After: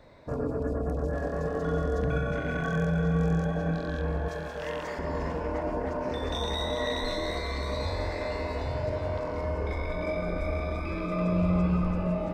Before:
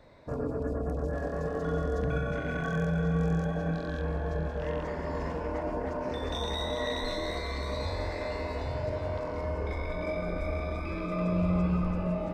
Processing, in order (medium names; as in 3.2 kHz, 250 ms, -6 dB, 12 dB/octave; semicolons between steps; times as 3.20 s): 4.28–4.99 s: tilt EQ +3 dB/octave; trim +2 dB